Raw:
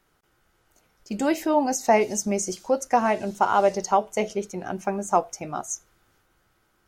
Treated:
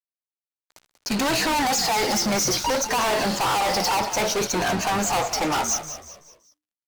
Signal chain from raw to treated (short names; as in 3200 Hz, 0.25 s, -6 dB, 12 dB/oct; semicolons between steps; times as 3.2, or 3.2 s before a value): moving spectral ripple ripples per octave 1.5, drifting +0.61 Hz, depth 9 dB; speaker cabinet 300–5700 Hz, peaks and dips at 380 Hz -9 dB, 610 Hz -5 dB, 920 Hz +9 dB, 1400 Hz +4 dB, 4500 Hz +9 dB; in parallel at +2 dB: compressor, threshold -24 dBFS, peak gain reduction 13 dB; on the sum: fuzz box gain 38 dB, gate -47 dBFS; frequency-shifting echo 0.189 s, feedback 41%, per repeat -76 Hz, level -11 dB; gain -8 dB